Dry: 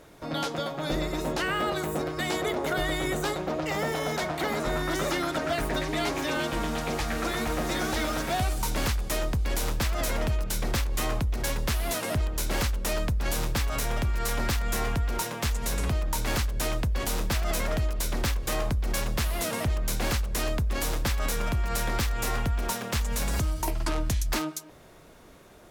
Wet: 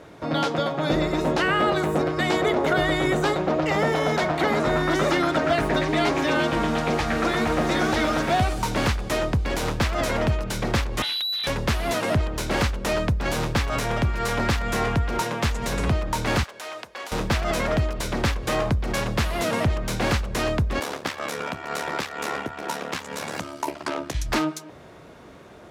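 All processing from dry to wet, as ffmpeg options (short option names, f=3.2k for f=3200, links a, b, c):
-filter_complex "[0:a]asettb=1/sr,asplit=3[a][b][c];[a]atrim=end=11.024[d];[b]atrim=start=11.02:end=11.47,asetpts=PTS-STARTPTS,afade=t=in:d=0.004:c=qsin,afade=t=out:st=0.446:d=0.004:c=qsin,lowpass=f=3.4k:t=q:w=0.5098,lowpass=f=3.4k:t=q:w=0.6013,lowpass=f=3.4k:t=q:w=0.9,lowpass=f=3.4k:t=q:w=2.563,afreqshift=-4000,volume=28.5dB,asoftclip=hard,volume=-28.5dB[e];[c]atrim=start=11.466[f];[d][e]acrossfade=d=0.004:c1=hsin:c2=qsin[g];[g][f]acrossfade=d=0.004:c1=qsin:c2=hsin,asettb=1/sr,asplit=3[h][i][j];[h]atrim=end=16.434[k];[i]atrim=start=16.43:end=17.12,asetpts=PTS-STARTPTS,afade=t=in:d=0.004:c=qsin,afade=t=out:st=0.686:d=0.004:c=qsin,highpass=680,acompressor=threshold=-37dB:ratio=4:attack=3.2:release=140:knee=1:detection=peak[l];[j]atrim=start=17.116[m];[k][l]acrossfade=d=0.004:c1=hsin:c2=qsin[n];[n][m]acrossfade=d=0.004:c1=qsin:c2=hsin,asettb=1/sr,asplit=3[o][p][q];[o]atrim=end=20.794[r];[p]atrim=start=20.79:end=24.15,asetpts=PTS-STARTPTS,afade=t=in:d=0.004:c=qsin,afade=t=out:st=3.356:d=0.004:c=qsin,highpass=270,aeval=exprs='val(0)*sin(2*PI*36*n/s)':c=same[s];[q]atrim=start=24.146[t];[r][s]acrossfade=d=0.004:c1=hsin:c2=qsin[u];[u][t]acrossfade=d=0.004:c1=qsin:c2=hsin,highpass=73,aemphasis=mode=reproduction:type=50fm,volume=7dB"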